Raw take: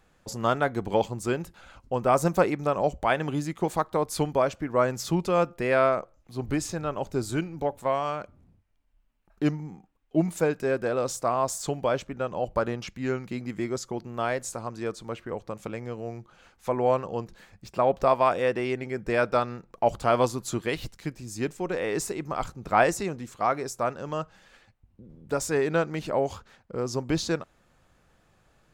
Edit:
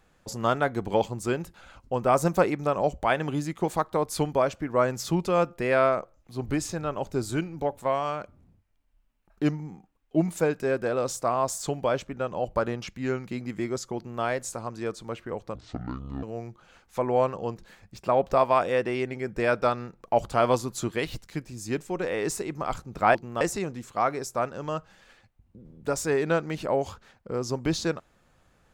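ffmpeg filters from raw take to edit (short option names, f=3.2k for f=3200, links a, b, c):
-filter_complex "[0:a]asplit=5[a][b][c][d][e];[a]atrim=end=15.554[f];[b]atrim=start=15.55:end=15.93,asetpts=PTS-STARTPTS,asetrate=24696,aresample=44100[g];[c]atrim=start=15.926:end=22.852[h];[d]atrim=start=13.968:end=14.232[i];[e]atrim=start=22.848[j];[f][g]acrossfade=d=0.004:c1=hsin:c2=hsin[k];[k][h]acrossfade=d=0.004:c1=hsin:c2=hsin[l];[l][i]acrossfade=d=0.004:c1=hsin:c2=hsin[m];[m][j]acrossfade=d=0.004:c1=hsin:c2=hsin"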